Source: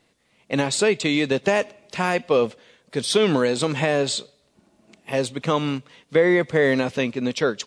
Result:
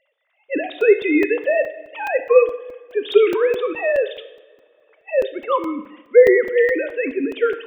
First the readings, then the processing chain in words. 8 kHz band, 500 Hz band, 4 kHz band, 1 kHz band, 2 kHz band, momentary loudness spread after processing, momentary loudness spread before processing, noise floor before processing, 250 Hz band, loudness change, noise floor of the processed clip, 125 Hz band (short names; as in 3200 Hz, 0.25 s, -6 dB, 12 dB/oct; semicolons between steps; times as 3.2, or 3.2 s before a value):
under -20 dB, +5.5 dB, -9.0 dB, 0.0 dB, +1.5 dB, 13 LU, 9 LU, -64 dBFS, -1.0 dB, +3.5 dB, -67 dBFS, under -20 dB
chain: sine-wave speech; two-slope reverb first 0.84 s, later 3.1 s, from -22 dB, DRR 8 dB; crackling interface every 0.21 s, samples 128, zero, from 0.81; gain +4 dB